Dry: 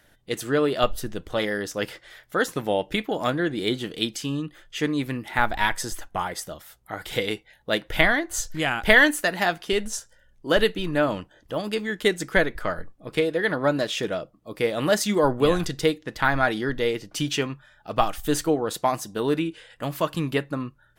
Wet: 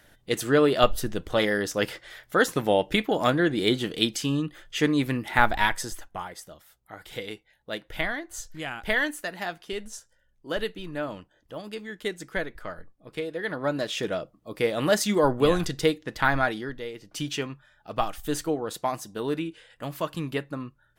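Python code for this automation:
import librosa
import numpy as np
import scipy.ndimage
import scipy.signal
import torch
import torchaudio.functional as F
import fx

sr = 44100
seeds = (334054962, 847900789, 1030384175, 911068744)

y = fx.gain(x, sr, db=fx.line((5.47, 2.0), (6.35, -9.5), (13.19, -9.5), (14.14, -1.0), (16.36, -1.0), (16.91, -13.0), (17.15, -5.0)))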